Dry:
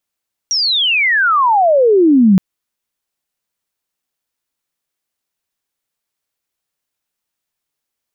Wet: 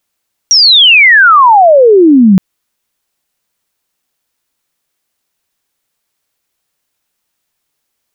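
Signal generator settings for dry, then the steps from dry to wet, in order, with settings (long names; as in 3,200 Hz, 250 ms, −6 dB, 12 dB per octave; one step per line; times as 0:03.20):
glide logarithmic 5,800 Hz → 180 Hz −12.5 dBFS → −5 dBFS 1.87 s
boost into a limiter +10 dB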